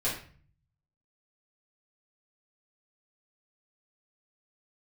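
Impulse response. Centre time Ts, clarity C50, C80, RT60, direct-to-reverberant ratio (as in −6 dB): 33 ms, 5.5 dB, 10.0 dB, 0.45 s, −9.5 dB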